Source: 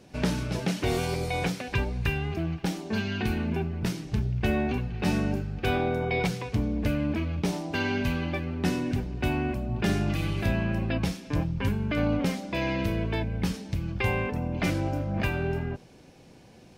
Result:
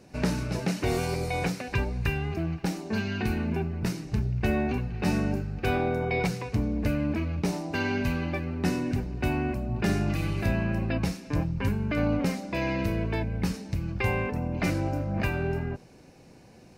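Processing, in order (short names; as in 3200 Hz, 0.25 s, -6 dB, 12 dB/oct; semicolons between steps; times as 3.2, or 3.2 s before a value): bell 3300 Hz -10 dB 0.24 oct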